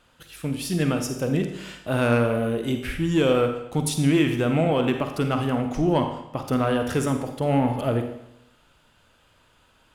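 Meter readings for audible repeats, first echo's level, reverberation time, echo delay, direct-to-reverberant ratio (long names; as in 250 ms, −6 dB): no echo audible, no echo audible, 0.80 s, no echo audible, 5.5 dB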